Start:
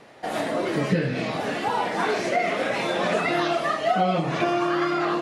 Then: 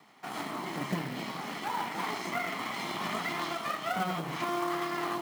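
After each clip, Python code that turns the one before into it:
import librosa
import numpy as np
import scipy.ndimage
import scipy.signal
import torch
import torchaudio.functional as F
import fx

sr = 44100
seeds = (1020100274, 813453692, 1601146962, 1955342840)

y = fx.lower_of_two(x, sr, delay_ms=0.95)
y = scipy.signal.sosfilt(scipy.signal.butter(4, 150.0, 'highpass', fs=sr, output='sos'), y)
y = fx.quant_float(y, sr, bits=2)
y = y * librosa.db_to_amplitude(-7.5)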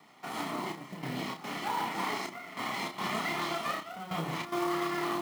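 y = fx.notch(x, sr, hz=1600.0, q=11.0)
y = fx.step_gate(y, sr, bpm=146, pattern='xxxxxxx...xxx.x', floor_db=-12.0, edge_ms=4.5)
y = fx.doubler(y, sr, ms=31.0, db=-5.0)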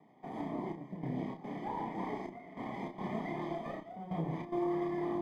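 y = fx.cheby_harmonics(x, sr, harmonics=(6,), levels_db=(-30,), full_scale_db=-19.5)
y = np.convolve(y, np.full(32, 1.0 / 32))[:len(y)]
y = y * librosa.db_to_amplitude(1.0)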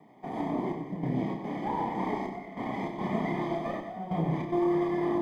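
y = fx.echo_feedback(x, sr, ms=95, feedback_pct=48, wet_db=-8)
y = y * librosa.db_to_amplitude(6.5)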